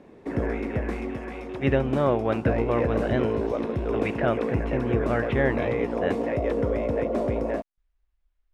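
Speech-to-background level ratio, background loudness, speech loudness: 0.0 dB, -28.0 LUFS, -28.0 LUFS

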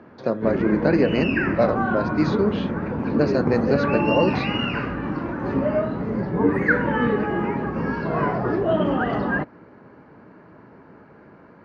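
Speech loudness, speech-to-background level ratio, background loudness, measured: -23.5 LUFS, 0.0 dB, -23.5 LUFS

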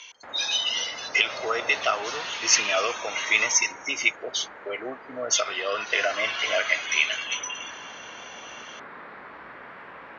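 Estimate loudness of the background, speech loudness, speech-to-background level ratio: -41.5 LUFS, -24.5 LUFS, 17.0 dB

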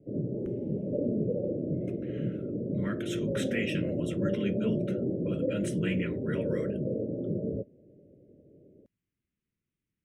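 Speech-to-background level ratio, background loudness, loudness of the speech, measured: -3.5 dB, -32.5 LUFS, -36.0 LUFS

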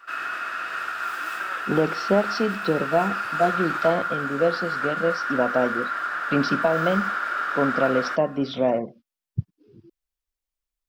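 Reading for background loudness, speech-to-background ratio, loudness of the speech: -27.0 LUFS, 2.0 dB, -25.0 LUFS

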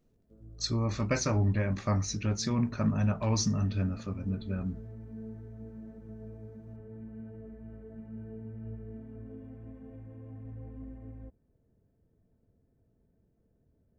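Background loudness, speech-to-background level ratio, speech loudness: -46.5 LUFS, 16.0 dB, -30.5 LUFS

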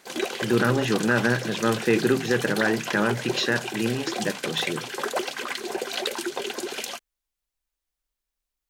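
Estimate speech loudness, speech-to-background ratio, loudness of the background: -25.0 LUFS, 5.5 dB, -30.5 LUFS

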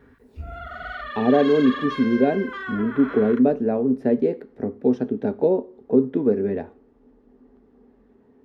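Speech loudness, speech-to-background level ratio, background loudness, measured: -21.5 LUFS, 12.0 dB, -33.5 LUFS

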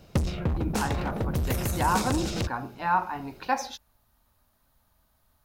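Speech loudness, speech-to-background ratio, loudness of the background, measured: -31.0 LUFS, -1.0 dB, -30.0 LUFS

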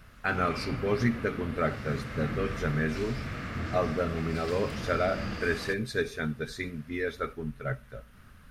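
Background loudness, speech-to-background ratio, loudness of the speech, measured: -37.5 LUFS, 6.0 dB, -31.5 LUFS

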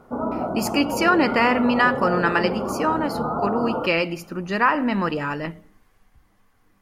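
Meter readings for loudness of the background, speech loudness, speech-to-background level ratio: -27.0 LUFS, -22.0 LUFS, 5.0 dB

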